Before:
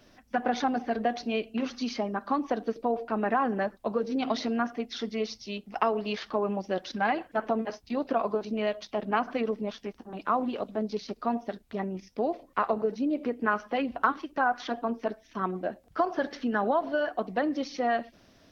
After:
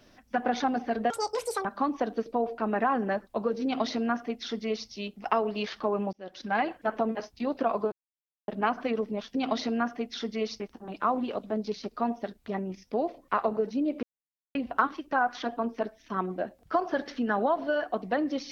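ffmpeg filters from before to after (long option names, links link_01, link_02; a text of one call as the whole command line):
ffmpeg -i in.wav -filter_complex "[0:a]asplit=10[link_01][link_02][link_03][link_04][link_05][link_06][link_07][link_08][link_09][link_10];[link_01]atrim=end=1.104[link_11];[link_02]atrim=start=1.1:end=2.15,asetpts=PTS-STARTPTS,asetrate=84231,aresample=44100,atrim=end_sample=24243,asetpts=PTS-STARTPTS[link_12];[link_03]atrim=start=2.146:end=6.63,asetpts=PTS-STARTPTS,afade=type=out:start_time=4.48:duration=0.004:curve=hsin[link_13];[link_04]atrim=start=6.63:end=8.42,asetpts=PTS-STARTPTS,afade=type=in:duration=0.46,afade=type=out:start_time=1.786:duration=0.004:curve=hsin[link_14];[link_05]atrim=start=8.42:end=8.98,asetpts=PTS-STARTPTS,volume=0[link_15];[link_06]atrim=start=8.98:end=9.852,asetpts=PTS-STARTPTS,afade=type=in:duration=0.004:curve=hsin[link_16];[link_07]atrim=start=4.138:end=5.392[link_17];[link_08]atrim=start=9.848:end=13.28,asetpts=PTS-STARTPTS,afade=type=out:start_time=3.428:duration=0.004:curve=hsin[link_18];[link_09]atrim=start=13.28:end=13.8,asetpts=PTS-STARTPTS,volume=0[link_19];[link_10]atrim=start=13.8,asetpts=PTS-STARTPTS,afade=type=in:duration=0.004:curve=hsin[link_20];[link_11][link_12]acrossfade=duration=0.004:curve1=hsin:curve2=hsin[link_21];[link_13][link_14][link_15][link_16]concat=n=4:v=0:a=1[link_22];[link_21][link_22]acrossfade=duration=0.004:curve1=hsin:curve2=hsin[link_23];[link_23][link_17]acrossfade=duration=0.004:curve1=hsin:curve2=hsin[link_24];[link_18][link_19][link_20]concat=n=3:v=0:a=1[link_25];[link_24][link_25]acrossfade=duration=0.004:curve1=hsin:curve2=hsin" out.wav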